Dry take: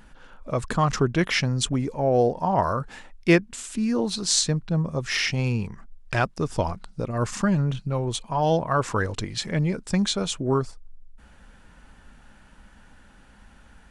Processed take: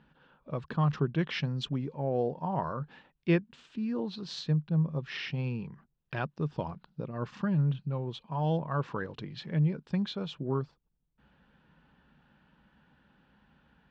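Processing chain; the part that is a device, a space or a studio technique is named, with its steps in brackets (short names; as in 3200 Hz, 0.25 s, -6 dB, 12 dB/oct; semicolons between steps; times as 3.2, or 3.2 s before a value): guitar cabinet (speaker cabinet 87–3700 Hz, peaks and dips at 100 Hz -8 dB, 150 Hz +9 dB, 670 Hz -4 dB, 1300 Hz -3 dB, 2100 Hz -6 dB); 1.2–1.85 high shelf 5000 Hz +8 dB; gain -9 dB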